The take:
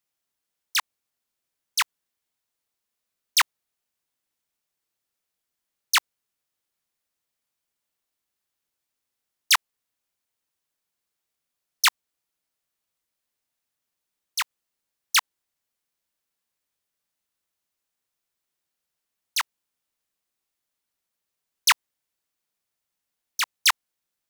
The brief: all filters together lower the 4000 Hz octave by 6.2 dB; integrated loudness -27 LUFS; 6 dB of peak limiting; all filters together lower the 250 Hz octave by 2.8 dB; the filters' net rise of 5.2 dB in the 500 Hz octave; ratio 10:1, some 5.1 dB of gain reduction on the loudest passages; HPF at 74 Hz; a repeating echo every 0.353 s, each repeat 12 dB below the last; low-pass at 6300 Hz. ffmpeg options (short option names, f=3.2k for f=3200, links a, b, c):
-af "highpass=74,lowpass=6.3k,equalizer=f=250:t=o:g=-6,equalizer=f=500:t=o:g=9,equalizer=f=4k:t=o:g=-7.5,acompressor=threshold=-21dB:ratio=10,alimiter=limit=-21dB:level=0:latency=1,aecho=1:1:353|706|1059:0.251|0.0628|0.0157,volume=8.5dB"